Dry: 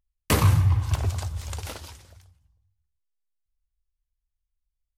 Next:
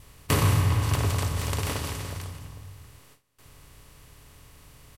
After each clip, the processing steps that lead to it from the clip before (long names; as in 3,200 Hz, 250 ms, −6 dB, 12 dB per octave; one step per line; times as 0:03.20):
compressor on every frequency bin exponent 0.4
noise gate with hold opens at −39 dBFS
comb filter 7.1 ms, depth 32%
level −5 dB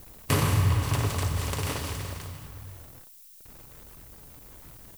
hold until the input has moved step −45 dBFS
background noise violet −50 dBFS
flanger 1.5 Hz, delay 0.4 ms, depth 7.7 ms, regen −44%
level +3 dB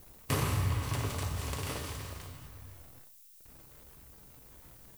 tuned comb filter 65 Hz, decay 0.42 s, harmonics all, mix 70%